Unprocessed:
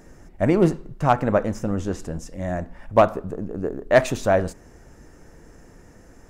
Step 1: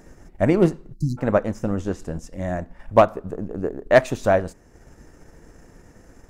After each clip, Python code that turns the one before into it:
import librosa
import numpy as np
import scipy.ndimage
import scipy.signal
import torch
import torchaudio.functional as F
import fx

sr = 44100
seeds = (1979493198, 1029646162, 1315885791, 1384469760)

y = fx.transient(x, sr, attack_db=2, sustain_db=-5)
y = fx.spec_erase(y, sr, start_s=0.93, length_s=0.25, low_hz=360.0, high_hz=3900.0)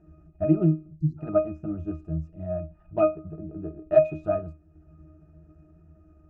y = fx.octave_resonator(x, sr, note='D#', decay_s=0.25)
y = y * librosa.db_to_amplitude(6.5)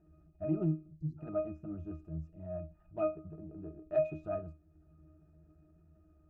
y = fx.transient(x, sr, attack_db=-5, sustain_db=1)
y = y * librosa.db_to_amplitude(-9.0)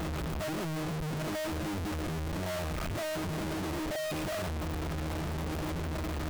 y = np.sign(x) * np.sqrt(np.mean(np.square(x)))
y = y * librosa.db_to_amplitude(5.0)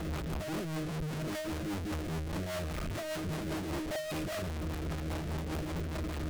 y = fx.rotary(x, sr, hz=5.0)